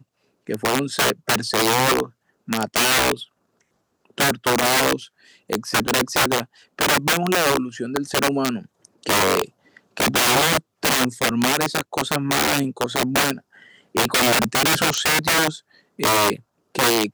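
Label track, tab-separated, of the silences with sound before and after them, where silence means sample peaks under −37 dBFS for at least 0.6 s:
3.240000	4.180000	silence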